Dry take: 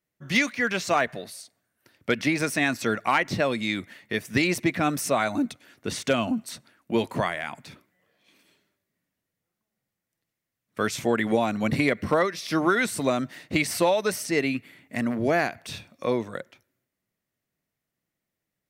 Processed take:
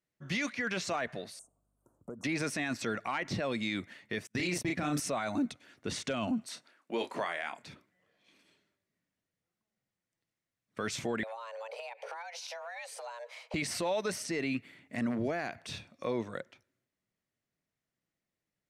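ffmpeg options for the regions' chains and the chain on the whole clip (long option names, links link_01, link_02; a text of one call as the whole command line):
ffmpeg -i in.wav -filter_complex "[0:a]asettb=1/sr,asplit=3[link_01][link_02][link_03];[link_01]atrim=end=1.394[link_04];[link_02]atrim=start=1.39:end=2.24,asetpts=PTS-STARTPTS,afade=type=in:duration=0.004:curve=qsin,afade=type=out:start_time=0.846:duration=0.004:curve=qsin,asuperstop=centerf=3000:order=12:qfactor=0.52,acompressor=threshold=-38dB:ratio=3:attack=3.2:release=140:knee=1:detection=peak,aeval=exprs='val(0)+0.0002*(sin(2*PI*50*n/s)+sin(2*PI*2*50*n/s)/2+sin(2*PI*3*50*n/s)/3+sin(2*PI*4*50*n/s)/4+sin(2*PI*5*50*n/s)/5)':channel_layout=same[link_05];[link_03]atrim=start=2.236[link_06];[link_04][link_05]acrossfade=duration=0.004:curve1=hsin:curve2=qsin[link_07];[link_07][link_06]acrossfade=duration=0.004:curve1=qsin:curve2=hsin,asettb=1/sr,asplit=3[link_08][link_09][link_10];[link_08]atrim=end=4.274[link_11];[link_09]atrim=start=4.27:end=5,asetpts=PTS-STARTPTS,afade=type=in:duration=0.004:curve=qsin,afade=type=out:start_time=0.726:duration=0.004:curve=qsin,agate=range=-38dB:threshold=-33dB:ratio=16:release=100:detection=peak,highshelf=frequency=5800:gain=6,asplit=2[link_12][link_13];[link_13]adelay=34,volume=-4dB[link_14];[link_12][link_14]amix=inputs=2:normalize=0,atrim=end_sample=32193[link_15];[link_10]atrim=start=4.996[link_16];[link_11][link_15]acrossfade=duration=0.004:curve1=hsin:curve2=qsin[link_17];[link_17][link_16]acrossfade=duration=0.004:curve1=qsin:curve2=hsin,asettb=1/sr,asplit=3[link_18][link_19][link_20];[link_18]atrim=end=6.474[link_21];[link_19]atrim=start=6.47:end=7.63,asetpts=PTS-STARTPTS,afade=type=in:duration=0.004:curve=qsin,afade=type=out:start_time=1.156:duration=0.004:curve=qsin,highpass=350,asplit=2[link_22][link_23];[link_23]adelay=30,volume=-10dB[link_24];[link_22][link_24]amix=inputs=2:normalize=0,atrim=end_sample=51156[link_25];[link_20]atrim=start=7.626[link_26];[link_21][link_25]acrossfade=duration=0.004:curve1=hsin:curve2=qsin[link_27];[link_27][link_26]acrossfade=duration=0.004:curve1=qsin:curve2=hsin,asettb=1/sr,asplit=3[link_28][link_29][link_30];[link_28]atrim=end=11.234[link_31];[link_29]atrim=start=11.23:end=13.54,asetpts=PTS-STARTPTS,afade=type=in:duration=0.004:curve=qsin,afade=type=out:start_time=2.306:duration=0.004:curve=qsin,highpass=frequency=170:poles=1,acompressor=threshold=-34dB:ratio=16:attack=3.2:release=140:knee=1:detection=peak,afreqshift=340[link_32];[link_30]atrim=start=13.536[link_33];[link_31][link_32]acrossfade=duration=0.004:curve1=hsin:curve2=qsin[link_34];[link_34][link_33]acrossfade=duration=0.004:curve1=qsin:curve2=hsin,lowpass=8400,alimiter=limit=-19.5dB:level=0:latency=1:release=12,volume=-4.5dB" out.wav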